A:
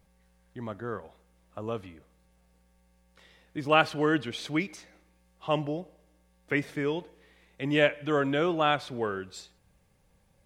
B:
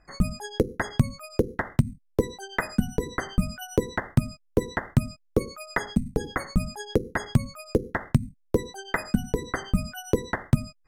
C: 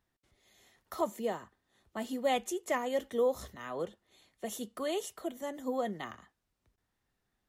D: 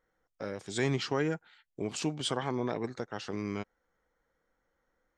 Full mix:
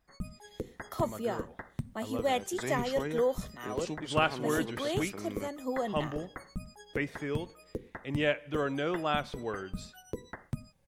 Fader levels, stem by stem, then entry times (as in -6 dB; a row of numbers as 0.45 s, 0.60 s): -5.5 dB, -15.5 dB, +0.5 dB, -6.5 dB; 0.45 s, 0.00 s, 0.00 s, 1.85 s